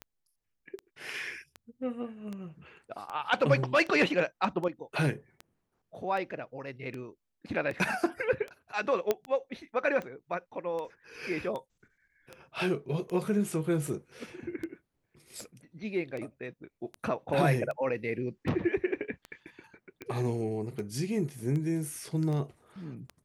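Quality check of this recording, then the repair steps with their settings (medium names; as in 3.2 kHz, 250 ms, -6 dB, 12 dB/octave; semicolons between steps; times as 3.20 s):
tick 78 rpm -26 dBFS
9.11 s: pop -13 dBFS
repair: de-click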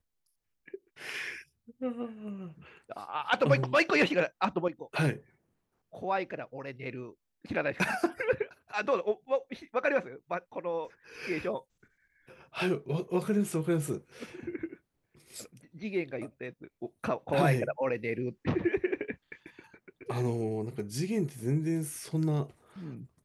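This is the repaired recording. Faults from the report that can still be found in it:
nothing left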